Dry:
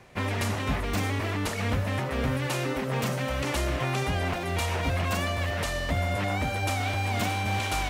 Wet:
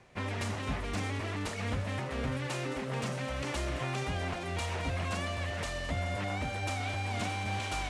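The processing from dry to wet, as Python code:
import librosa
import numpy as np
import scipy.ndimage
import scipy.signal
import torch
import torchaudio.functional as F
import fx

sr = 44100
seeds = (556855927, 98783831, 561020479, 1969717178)

y = scipy.signal.sosfilt(scipy.signal.butter(4, 9900.0, 'lowpass', fs=sr, output='sos'), x)
y = fx.echo_wet_highpass(y, sr, ms=216, feedback_pct=82, hz=2100.0, wet_db=-13.0)
y = y * librosa.db_to_amplitude(-6.5)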